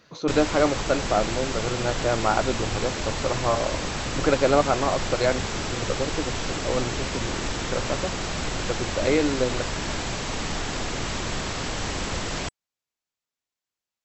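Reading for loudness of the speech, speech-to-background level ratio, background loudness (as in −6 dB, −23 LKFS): −26.5 LKFS, 2.5 dB, −29.0 LKFS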